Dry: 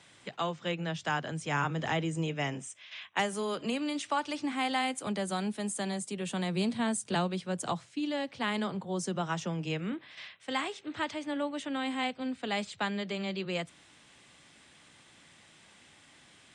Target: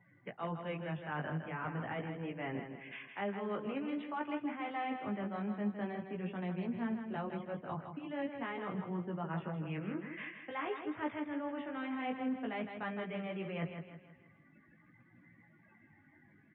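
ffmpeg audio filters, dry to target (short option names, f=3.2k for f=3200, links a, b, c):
-af "lowpass=f=2.4k:w=0.5412,lowpass=f=2.4k:w=1.3066,afftdn=nr=28:nf=-54,areverse,acompressor=threshold=-41dB:ratio=16,areverse,flanger=delay=16.5:depth=3.4:speed=0.46,aecho=1:1:160|320|480|640|800:0.422|0.181|0.078|0.0335|0.0144,volume=8dB"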